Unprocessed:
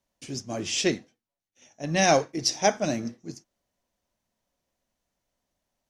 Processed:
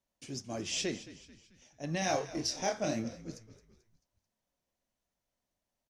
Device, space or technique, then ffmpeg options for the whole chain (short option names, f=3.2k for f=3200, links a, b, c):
clipper into limiter: -filter_complex "[0:a]asoftclip=type=hard:threshold=-10dB,alimiter=limit=-17dB:level=0:latency=1:release=101,asettb=1/sr,asplit=3[a][b][c];[a]atrim=end=1.994[d];[b]atrim=start=1.99:end=3.04,asetpts=PTS-STARTPTS,afade=t=in:d=0.004:c=qsin,afade=t=out:st=1.046:d=0.004:c=qsin,asplit=2[e][f];[f]adelay=27,volume=-3dB[g];[e][g]amix=inputs=2:normalize=0,atrim=end_sample=46305[h];[c]atrim=start=3.036[i];[d][h]acrossfade=d=0.004:c1=hsin:c2=qsin[j];[j][i]acrossfade=d=0.004:c1=qsin:c2=hsin,asplit=5[k][l][m][n][o];[l]adelay=219,afreqshift=-57,volume=-16dB[p];[m]adelay=438,afreqshift=-114,volume=-22.7dB[q];[n]adelay=657,afreqshift=-171,volume=-29.5dB[r];[o]adelay=876,afreqshift=-228,volume=-36.2dB[s];[k][p][q][r][s]amix=inputs=5:normalize=0,volume=-6.5dB"